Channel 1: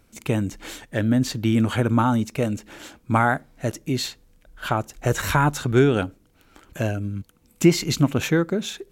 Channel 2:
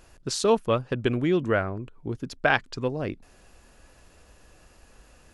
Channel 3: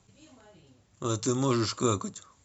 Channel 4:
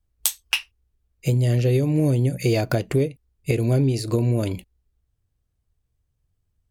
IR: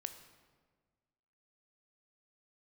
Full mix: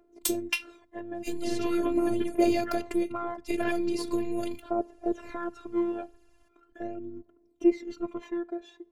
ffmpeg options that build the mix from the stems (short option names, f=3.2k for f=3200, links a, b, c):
-filter_complex "[0:a]acontrast=79,bandpass=f=470:t=q:w=2:csg=0,aphaser=in_gain=1:out_gain=1:delay=1.3:decay=0.72:speed=0.41:type=triangular,volume=-7.5dB,asplit=2[a][b];[b]volume=-17dB[c];[1:a]aphaser=in_gain=1:out_gain=1:delay=2:decay=0.6:speed=1.4:type=triangular,adelay=1150,volume=-11dB[d];[3:a]volume=-3dB[e];[4:a]atrim=start_sample=2205[f];[c][f]afir=irnorm=-1:irlink=0[g];[a][d][e][g]amix=inputs=4:normalize=0,highshelf=f=9.5k:g=-3.5,afftfilt=real='hypot(re,im)*cos(PI*b)':imag='0':win_size=512:overlap=0.75"